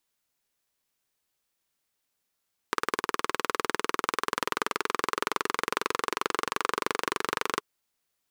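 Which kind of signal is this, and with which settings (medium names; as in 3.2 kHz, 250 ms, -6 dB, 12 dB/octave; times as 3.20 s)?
single-cylinder engine model, changing speed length 4.88 s, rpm 2300, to 2900, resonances 430/1100 Hz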